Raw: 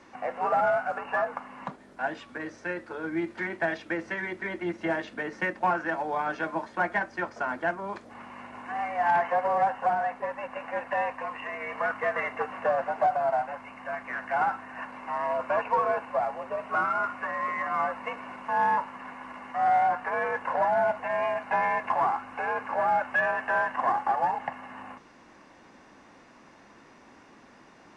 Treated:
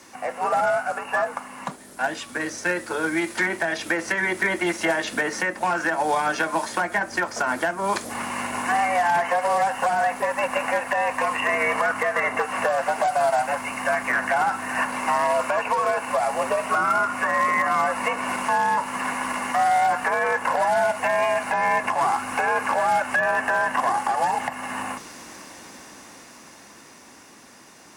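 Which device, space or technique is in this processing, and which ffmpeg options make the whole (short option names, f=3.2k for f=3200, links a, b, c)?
FM broadcast chain: -filter_complex "[0:a]highpass=45,dynaudnorm=f=350:g=17:m=12dB,acrossover=split=520|1900[a][b][c];[a]acompressor=threshold=-31dB:ratio=4[d];[b]acompressor=threshold=-22dB:ratio=4[e];[c]acompressor=threshold=-35dB:ratio=4[f];[d][e][f]amix=inputs=3:normalize=0,aemphasis=mode=production:type=50fm,alimiter=limit=-16dB:level=0:latency=1:release=260,asoftclip=type=hard:threshold=-17.5dB,lowpass=f=15k:w=0.5412,lowpass=f=15k:w=1.3066,aemphasis=mode=production:type=50fm,volume=3.5dB"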